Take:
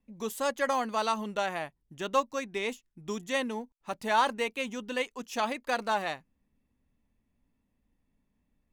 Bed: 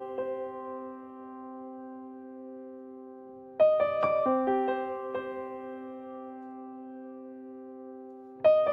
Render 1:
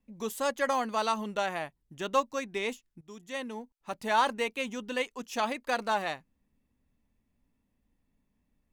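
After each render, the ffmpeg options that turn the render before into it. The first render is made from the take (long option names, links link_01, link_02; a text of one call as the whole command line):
ffmpeg -i in.wav -filter_complex "[0:a]asplit=2[link_01][link_02];[link_01]atrim=end=3.01,asetpts=PTS-STARTPTS,afade=type=out:start_time=3.006:duration=0.004:curve=hsin:silence=0.125893[link_03];[link_02]atrim=start=3.01,asetpts=PTS-STARTPTS,afade=type=in:duration=1.42:curve=qsin:silence=0.125893[link_04];[link_03][link_04]concat=n=2:v=0:a=1" out.wav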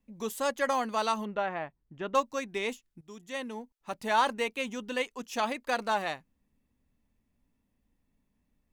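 ffmpeg -i in.wav -filter_complex "[0:a]asettb=1/sr,asplit=3[link_01][link_02][link_03];[link_01]atrim=end=1.254[link_04];[link_02]atrim=start=1.25:end=2.15,asetpts=PTS-STARTPTS,afade=type=in:duration=0.004:curve=qsin,afade=type=out:start_time=0.896:duration=0.004:curve=qsin,lowpass=2100[link_05];[link_03]atrim=start=2.146[link_06];[link_04][link_05]acrossfade=duration=0.004:curve1=hsin:curve2=qsin[link_07];[link_07][link_06]acrossfade=duration=0.004:curve1=qsin:curve2=hsin" out.wav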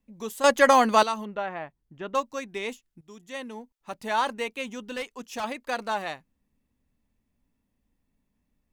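ffmpeg -i in.wav -filter_complex "[0:a]asettb=1/sr,asplit=3[link_01][link_02][link_03];[link_01]atrim=end=4.804[link_04];[link_02]atrim=start=4.8:end=5.44,asetpts=PTS-STARTPTS,afade=type=in:duration=0.004:curve=qsin,afade=type=out:start_time=0.636:duration=0.004:curve=qsin,volume=27.5dB,asoftclip=hard,volume=-27.5dB[link_05];[link_03]atrim=start=5.436[link_06];[link_04][link_05]acrossfade=duration=0.004:curve1=hsin:curve2=qsin[link_07];[link_07][link_06]acrossfade=duration=0.004:curve1=qsin:curve2=hsin,asplit=3[link_08][link_09][link_10];[link_08]atrim=end=0.442[link_11];[link_09]atrim=start=0.438:end=1.032,asetpts=PTS-STARTPTS,volume=11dB[link_12];[link_10]atrim=start=1.028[link_13];[link_11][link_12]acrossfade=duration=0.004:curve1=hsin:curve2=hsin[link_14];[link_14][link_13]acrossfade=duration=0.004:curve1=hsin:curve2=hsin" out.wav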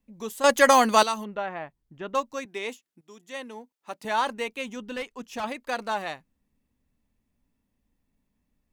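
ffmpeg -i in.wav -filter_complex "[0:a]asettb=1/sr,asplit=3[link_01][link_02][link_03];[link_01]atrim=end=0.494[link_04];[link_02]atrim=start=0.49:end=1.24,asetpts=PTS-STARTPTS,afade=type=in:duration=0.004:curve=qsin,afade=type=out:start_time=0.746:duration=0.004:curve=qsin,highshelf=frequency=4500:gain=8.5[link_05];[link_03]atrim=start=1.236[link_06];[link_04][link_05]acrossfade=duration=0.004:curve1=hsin:curve2=qsin[link_07];[link_07][link_06]acrossfade=duration=0.004:curve1=qsin:curve2=hsin,asettb=1/sr,asplit=3[link_08][link_09][link_10];[link_08]atrim=end=2.454[link_11];[link_09]atrim=start=2.45:end=4.05,asetpts=PTS-STARTPTS,afade=type=in:duration=0.004:curve=qsin,afade=type=out:start_time=1.596:duration=0.004:curve=qsin,highpass=250[link_12];[link_10]atrim=start=4.046[link_13];[link_11][link_12]acrossfade=duration=0.004:curve1=hsin:curve2=qsin[link_14];[link_14][link_13]acrossfade=duration=0.004:curve1=qsin:curve2=hsin,asettb=1/sr,asplit=3[link_15][link_16][link_17];[link_15]atrim=end=4.764[link_18];[link_16]atrim=start=4.76:end=5.48,asetpts=PTS-STARTPTS,afade=type=in:duration=0.004:curve=qsin,afade=type=out:start_time=0.716:duration=0.004:curve=qsin,bass=frequency=250:gain=3,treble=frequency=4000:gain=-4[link_19];[link_17]atrim=start=5.476[link_20];[link_18][link_19]acrossfade=duration=0.004:curve1=hsin:curve2=qsin[link_21];[link_21][link_20]acrossfade=duration=0.004:curve1=qsin:curve2=hsin" out.wav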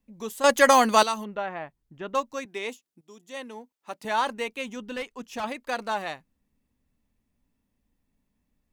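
ffmpeg -i in.wav -filter_complex "[0:a]asettb=1/sr,asplit=3[link_01][link_02][link_03];[link_01]atrim=end=2.704[link_04];[link_02]atrim=start=2.7:end=3.37,asetpts=PTS-STARTPTS,afade=type=in:duration=0.004:curve=qsin,afade=type=out:start_time=0.666:duration=0.004:curve=qsin,equalizer=frequency=1800:width=1.2:gain=-6[link_05];[link_03]atrim=start=3.366[link_06];[link_04][link_05]acrossfade=duration=0.004:curve1=hsin:curve2=qsin[link_07];[link_07][link_06]acrossfade=duration=0.004:curve1=qsin:curve2=hsin" out.wav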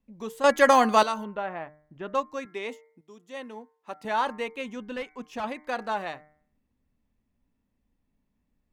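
ffmpeg -i in.wav -af "highshelf=frequency=4100:gain=-10.5,bandreject=frequency=151.4:width_type=h:width=4,bandreject=frequency=302.8:width_type=h:width=4,bandreject=frequency=454.2:width_type=h:width=4,bandreject=frequency=605.6:width_type=h:width=4,bandreject=frequency=757:width_type=h:width=4,bandreject=frequency=908.4:width_type=h:width=4,bandreject=frequency=1059.8:width_type=h:width=4,bandreject=frequency=1211.2:width_type=h:width=4,bandreject=frequency=1362.6:width_type=h:width=4,bandreject=frequency=1514:width_type=h:width=4,bandreject=frequency=1665.4:width_type=h:width=4,bandreject=frequency=1816.8:width_type=h:width=4,bandreject=frequency=1968.2:width_type=h:width=4,bandreject=frequency=2119.6:width_type=h:width=4,bandreject=frequency=2271:width_type=h:width=4" out.wav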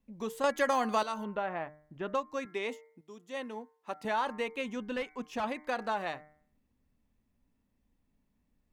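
ffmpeg -i in.wav -af "acompressor=threshold=-30dB:ratio=2.5" out.wav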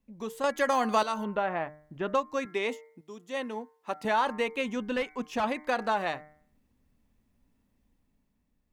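ffmpeg -i in.wav -af "dynaudnorm=framelen=120:gausssize=13:maxgain=5dB" out.wav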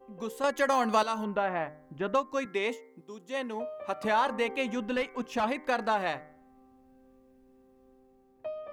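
ffmpeg -i in.wav -i bed.wav -filter_complex "[1:a]volume=-16.5dB[link_01];[0:a][link_01]amix=inputs=2:normalize=0" out.wav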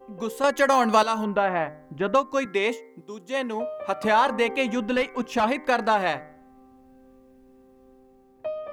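ffmpeg -i in.wav -af "volume=6.5dB" out.wav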